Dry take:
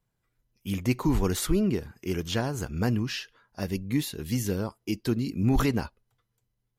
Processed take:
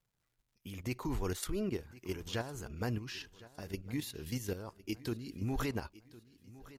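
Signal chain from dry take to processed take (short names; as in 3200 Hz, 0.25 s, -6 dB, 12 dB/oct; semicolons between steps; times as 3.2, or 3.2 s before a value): dynamic EQ 190 Hz, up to -7 dB, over -39 dBFS, Q 1.3; level quantiser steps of 10 dB; crackle 190/s -64 dBFS; feedback echo 1.059 s, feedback 39%, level -19 dB; gain -4 dB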